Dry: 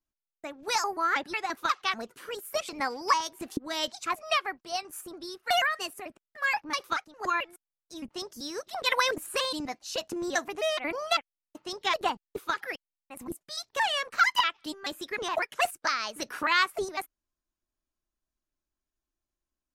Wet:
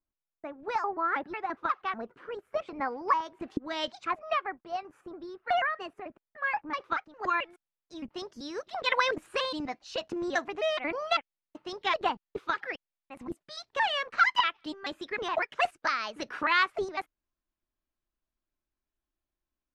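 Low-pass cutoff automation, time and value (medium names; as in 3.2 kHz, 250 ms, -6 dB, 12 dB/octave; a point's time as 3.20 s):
3.10 s 1.5 kHz
3.90 s 3.5 kHz
4.21 s 1.7 kHz
6.67 s 1.7 kHz
7.34 s 3.5 kHz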